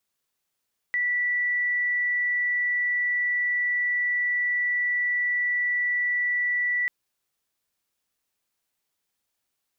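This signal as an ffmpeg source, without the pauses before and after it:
ffmpeg -f lavfi -i "aevalsrc='0.0794*sin(2*PI*1960*t)':duration=5.94:sample_rate=44100" out.wav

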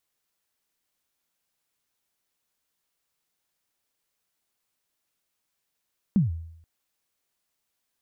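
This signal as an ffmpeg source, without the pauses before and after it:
ffmpeg -f lavfi -i "aevalsrc='0.188*pow(10,-3*t/0.74)*sin(2*PI*(220*0.148/log(82/220)*(exp(log(82/220)*min(t,0.148)/0.148)-1)+82*max(t-0.148,0)))':duration=0.48:sample_rate=44100" out.wav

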